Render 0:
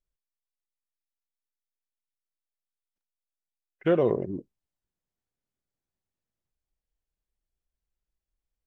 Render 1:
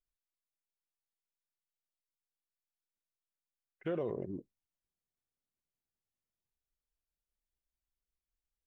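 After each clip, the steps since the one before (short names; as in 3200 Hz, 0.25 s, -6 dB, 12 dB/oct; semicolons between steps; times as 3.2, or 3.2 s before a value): limiter -19.5 dBFS, peak gain reduction 7.5 dB; gain -7.5 dB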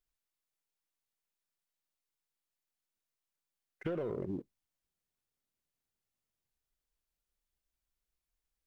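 sample leveller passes 1; compressor, threshold -39 dBFS, peak gain reduction 8 dB; gain +5 dB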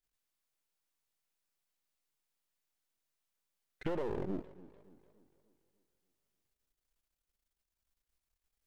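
half-wave gain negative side -12 dB; warbling echo 0.292 s, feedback 47%, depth 153 cents, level -19 dB; gain +4 dB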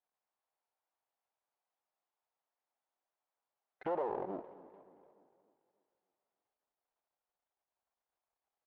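band-pass 780 Hz, Q 2.3; feedback echo 0.221 s, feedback 58%, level -20.5 dB; gain +9 dB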